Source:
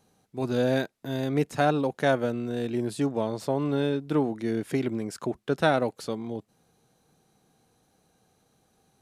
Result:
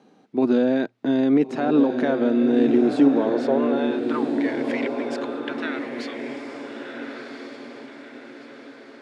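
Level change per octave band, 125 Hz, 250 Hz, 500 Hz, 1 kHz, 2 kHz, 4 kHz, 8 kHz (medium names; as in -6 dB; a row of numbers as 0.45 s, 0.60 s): -7.5 dB, +9.0 dB, +4.5 dB, +0.5 dB, +2.0 dB, +0.5 dB, no reading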